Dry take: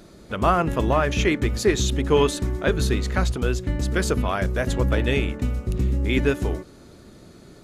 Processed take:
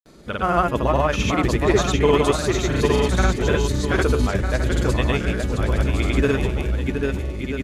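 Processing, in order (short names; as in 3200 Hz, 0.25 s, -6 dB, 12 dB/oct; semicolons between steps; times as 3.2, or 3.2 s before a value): on a send: bouncing-ball echo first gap 0.79 s, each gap 0.7×, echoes 5; on the sum: grains, pitch spread up and down by 0 st; gain +1.5 dB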